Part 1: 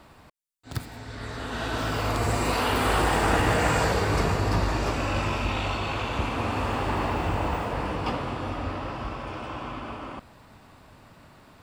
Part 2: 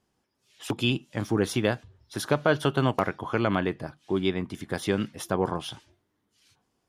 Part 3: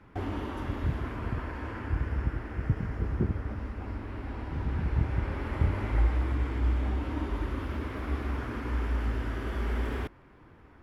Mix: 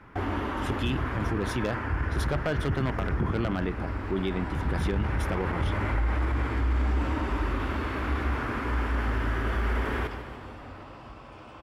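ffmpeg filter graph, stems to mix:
-filter_complex "[0:a]acompressor=threshold=0.0398:ratio=6,adelay=2050,volume=0.282[s0];[1:a]aeval=exprs='0.2*(abs(mod(val(0)/0.2+3,4)-2)-1)':c=same,bass=f=250:g=3,treble=f=4000:g=-6,volume=0.794,asplit=2[s1][s2];[2:a]equalizer=f=1400:w=0.72:g=6,volume=1.33,asplit=2[s3][s4];[s4]volume=0.282[s5];[s2]apad=whole_len=602935[s6];[s0][s6]sidechaincompress=threshold=0.0112:ratio=8:attack=16:release=1000[s7];[s5]aecho=0:1:144|288|432|576|720|864|1008|1152|1296:1|0.59|0.348|0.205|0.121|0.0715|0.0422|0.0249|0.0147[s8];[s7][s1][s3][s8]amix=inputs=4:normalize=0,alimiter=limit=0.112:level=0:latency=1:release=20"

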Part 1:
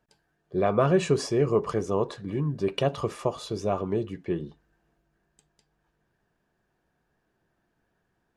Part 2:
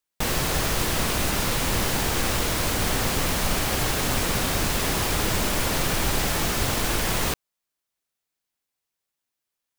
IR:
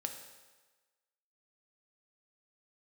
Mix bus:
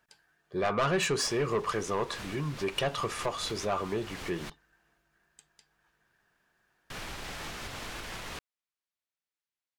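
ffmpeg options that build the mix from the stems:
-filter_complex "[0:a]equalizer=f=1500:t=o:w=1.5:g=5.5,volume=1,asplit=2[s0][s1];[1:a]aemphasis=mode=reproduction:type=75fm,alimiter=limit=0.112:level=0:latency=1:release=302,adelay=1050,volume=0.355,asplit=3[s2][s3][s4];[s2]atrim=end=4.5,asetpts=PTS-STARTPTS,afade=t=out:st=4.496:d=0.004:c=hsin[s5];[s3]atrim=start=4.5:end=6.9,asetpts=PTS-STARTPTS,volume=0[s6];[s4]atrim=start=6.9,asetpts=PTS-STARTPTS,afade=t=in:d=0.004:c=hsin[s7];[s5][s6][s7]concat=n=3:v=0:a=1[s8];[s1]apad=whole_len=478031[s9];[s8][s9]sidechaincompress=threshold=0.0251:ratio=8:attack=22:release=228[s10];[s0][s10]amix=inputs=2:normalize=0,tiltshelf=f=1100:g=-6,asoftclip=type=tanh:threshold=0.0794"

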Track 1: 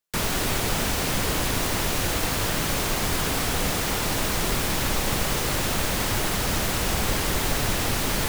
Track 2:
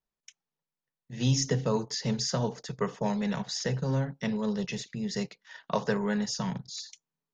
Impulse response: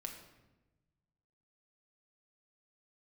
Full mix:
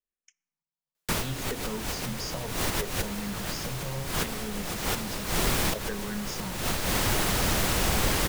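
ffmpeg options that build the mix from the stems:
-filter_complex "[0:a]adelay=950,volume=0.841,asplit=2[s0][s1];[s1]volume=0.158[s2];[1:a]bandreject=f=60:t=h:w=6,bandreject=f=120:t=h:w=6,asplit=2[s3][s4];[s4]afreqshift=-0.7[s5];[s3][s5]amix=inputs=2:normalize=1,volume=0.473,asplit=3[s6][s7][s8];[s7]volume=0.211[s9];[s8]apad=whole_len=407322[s10];[s0][s10]sidechaincompress=threshold=0.00316:ratio=8:attack=16:release=137[s11];[2:a]atrim=start_sample=2205[s12];[s2][s9]amix=inputs=2:normalize=0[s13];[s13][s12]afir=irnorm=-1:irlink=0[s14];[s11][s6][s14]amix=inputs=3:normalize=0"

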